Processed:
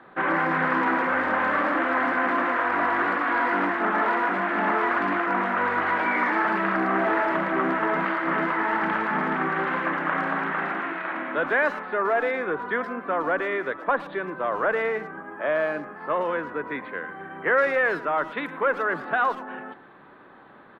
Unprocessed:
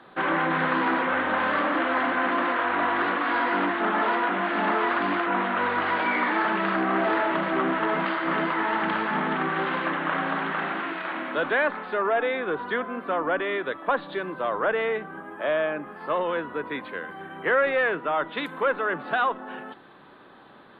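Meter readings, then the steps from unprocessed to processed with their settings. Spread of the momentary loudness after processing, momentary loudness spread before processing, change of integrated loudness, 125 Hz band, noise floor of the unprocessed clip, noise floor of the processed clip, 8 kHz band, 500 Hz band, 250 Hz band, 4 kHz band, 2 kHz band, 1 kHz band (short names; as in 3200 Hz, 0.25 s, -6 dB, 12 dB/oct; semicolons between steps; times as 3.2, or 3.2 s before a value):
7 LU, 7 LU, +1.0 dB, 0.0 dB, -50 dBFS, -49 dBFS, n/a, +0.5 dB, 0.0 dB, -6.0 dB, +1.5 dB, +1.0 dB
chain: resonant high shelf 2600 Hz -6.5 dB, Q 1.5; speakerphone echo 0.11 s, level -15 dB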